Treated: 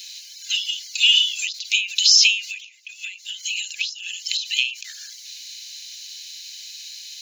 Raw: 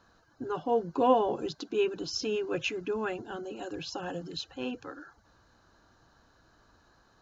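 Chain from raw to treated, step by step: steep high-pass 2200 Hz 72 dB/oct; high shelf 3300 Hz +7 dB; 2.47–4.27 compressor 8:1, threshold -55 dBFS, peak gain reduction 28.5 dB; maximiser +35.5 dB; ending taper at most 120 dB/s; gain -3.5 dB

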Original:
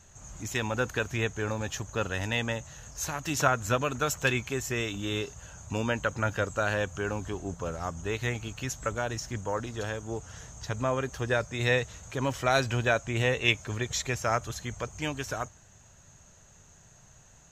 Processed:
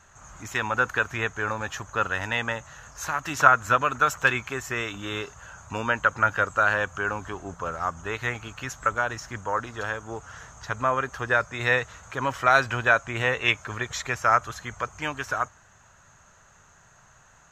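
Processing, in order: bell 1300 Hz +14.5 dB 1.6 oct; gain -3.5 dB

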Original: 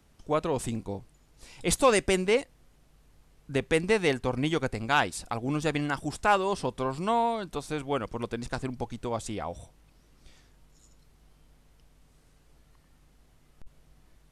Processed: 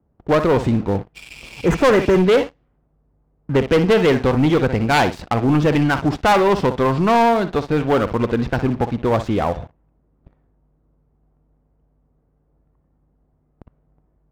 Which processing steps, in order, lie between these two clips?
self-modulated delay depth 0.2 ms; flutter echo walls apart 10.3 m, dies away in 0.26 s; low-pass opened by the level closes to 770 Hz, open at -26.5 dBFS; HPF 50 Hz 12 dB/oct; high shelf 2000 Hz -4.5 dB; spectral repair 1.18–2.17, 2100–5800 Hz after; air absorption 170 m; sample leveller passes 3; gain +5.5 dB

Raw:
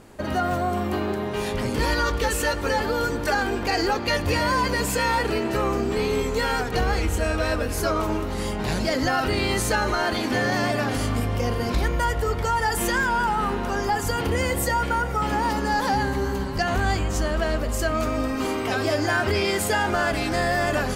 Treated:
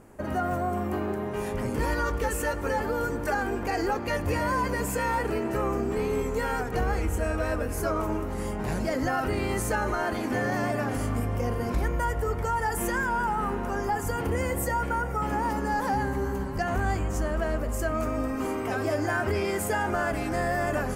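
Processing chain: bell 3900 Hz -13 dB 1.1 oct; gain -3.5 dB

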